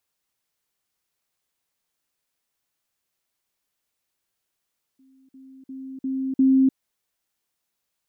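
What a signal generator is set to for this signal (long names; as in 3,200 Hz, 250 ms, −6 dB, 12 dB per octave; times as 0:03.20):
level staircase 265 Hz −53.5 dBFS, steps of 10 dB, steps 5, 0.30 s 0.05 s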